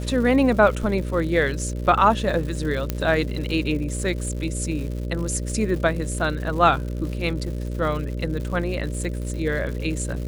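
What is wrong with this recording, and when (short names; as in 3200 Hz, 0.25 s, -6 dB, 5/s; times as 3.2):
buzz 60 Hz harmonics 10 -28 dBFS
crackle 190/s -32 dBFS
2.9 pop -9 dBFS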